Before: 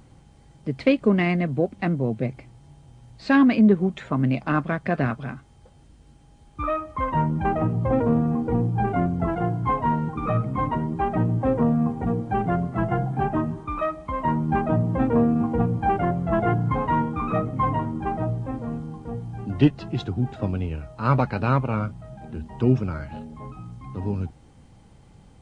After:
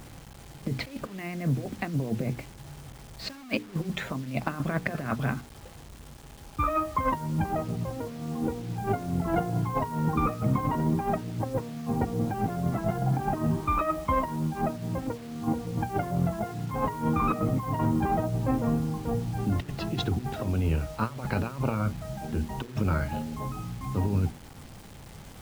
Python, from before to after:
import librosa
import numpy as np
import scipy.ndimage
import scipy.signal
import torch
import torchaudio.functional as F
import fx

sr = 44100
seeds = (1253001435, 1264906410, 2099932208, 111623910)

y = fx.over_compress(x, sr, threshold_db=-27.0, ratio=-0.5)
y = fx.hum_notches(y, sr, base_hz=60, count=8)
y = fx.quant_dither(y, sr, seeds[0], bits=8, dither='none')